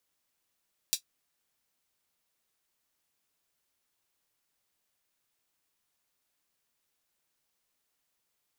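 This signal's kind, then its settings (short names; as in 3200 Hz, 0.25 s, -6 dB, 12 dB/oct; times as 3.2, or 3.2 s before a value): closed hi-hat, high-pass 4100 Hz, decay 0.10 s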